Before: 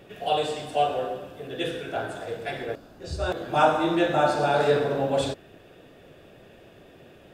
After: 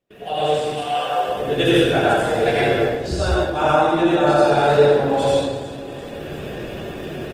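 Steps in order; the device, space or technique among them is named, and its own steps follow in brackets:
0:00.66–0:01.26: high-pass filter 1,300 Hz → 410 Hz 24 dB per octave
repeating echo 345 ms, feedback 35%, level −18 dB
speakerphone in a meeting room (convolution reverb RT60 0.95 s, pre-delay 74 ms, DRR −5.5 dB; automatic gain control gain up to 16 dB; noise gate −45 dBFS, range −26 dB; level −3 dB; Opus 20 kbit/s 48,000 Hz)

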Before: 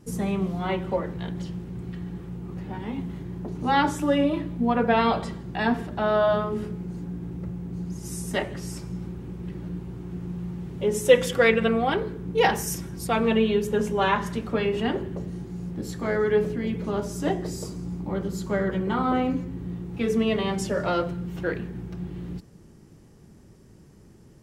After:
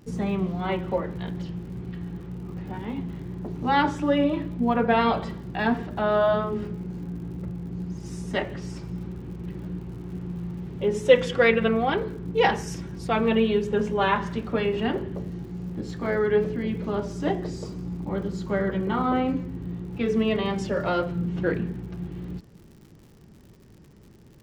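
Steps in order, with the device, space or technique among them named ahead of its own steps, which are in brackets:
lo-fi chain (low-pass filter 4,600 Hz 12 dB per octave; tape wow and flutter 23 cents; surface crackle 98 per second −44 dBFS)
0:21.15–0:21.73: parametric band 210 Hz +6 dB 1.9 octaves

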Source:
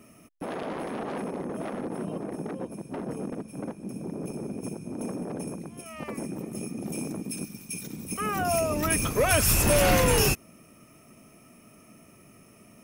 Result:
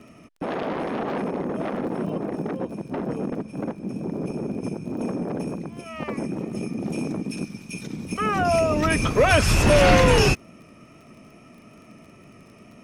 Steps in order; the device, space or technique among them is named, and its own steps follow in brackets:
lo-fi chain (low-pass filter 5,000 Hz 12 dB per octave; tape wow and flutter 20 cents; surface crackle 29 per second −48 dBFS)
level +6 dB

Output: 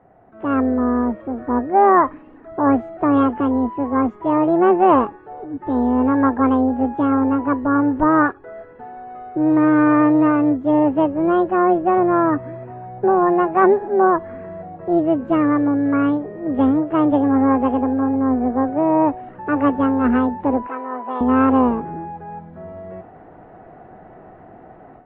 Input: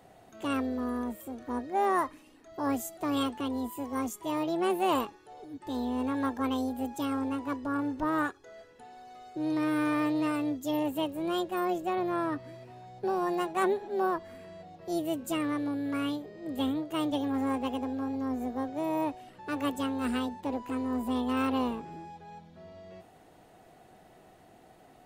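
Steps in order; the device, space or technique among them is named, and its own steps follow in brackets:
0:20.67–0:21.21: high-pass filter 710 Hz 12 dB per octave
action camera in a waterproof case (low-pass filter 1,700 Hz 24 dB per octave; automatic gain control gain up to 11 dB; level +3.5 dB; AAC 48 kbit/s 22,050 Hz)

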